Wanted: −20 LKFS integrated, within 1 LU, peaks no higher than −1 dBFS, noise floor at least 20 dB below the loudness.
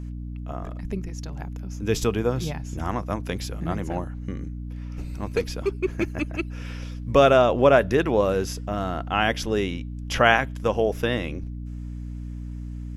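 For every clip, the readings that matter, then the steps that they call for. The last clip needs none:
mains hum 60 Hz; hum harmonics up to 300 Hz; level of the hum −31 dBFS; integrated loudness −24.5 LKFS; sample peak −2.0 dBFS; target loudness −20.0 LKFS
→ hum removal 60 Hz, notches 5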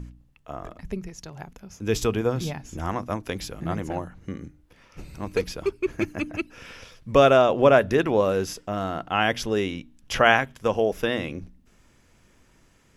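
mains hum none found; integrated loudness −24.0 LKFS; sample peak −2.0 dBFS; target loudness −20.0 LKFS
→ level +4 dB
brickwall limiter −1 dBFS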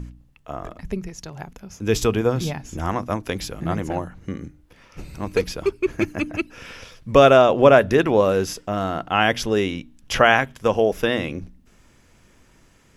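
integrated loudness −20.0 LKFS; sample peak −1.0 dBFS; background noise floor −55 dBFS

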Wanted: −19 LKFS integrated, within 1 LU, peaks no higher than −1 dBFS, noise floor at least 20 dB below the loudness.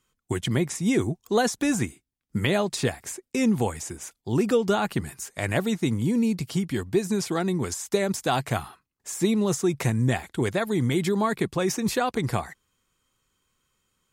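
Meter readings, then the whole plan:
integrated loudness −26.0 LKFS; sample peak −10.0 dBFS; target loudness −19.0 LKFS
→ level +7 dB

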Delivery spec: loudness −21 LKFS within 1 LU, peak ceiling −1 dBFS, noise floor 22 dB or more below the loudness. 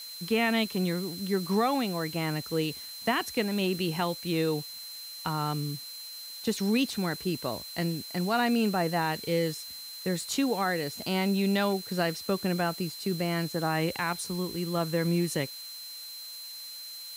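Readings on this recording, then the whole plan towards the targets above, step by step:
interfering tone 4,100 Hz; level of the tone −41 dBFS; background noise floor −42 dBFS; target noise floor −52 dBFS; integrated loudness −30.0 LKFS; sample peak −16.0 dBFS; target loudness −21.0 LKFS
→ notch filter 4,100 Hz, Q 30
noise reduction from a noise print 10 dB
level +9 dB

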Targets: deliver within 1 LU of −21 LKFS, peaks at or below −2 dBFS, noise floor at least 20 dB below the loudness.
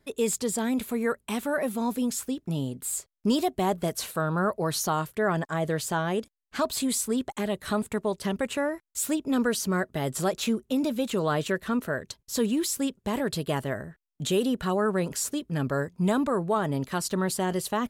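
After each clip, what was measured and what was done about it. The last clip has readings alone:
integrated loudness −28.0 LKFS; sample peak −14.0 dBFS; target loudness −21.0 LKFS
→ level +7 dB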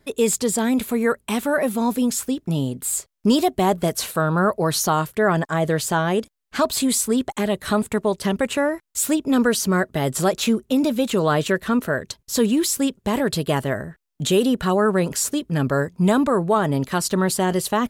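integrated loudness −21.0 LKFS; sample peak −7.0 dBFS; background noise floor −68 dBFS

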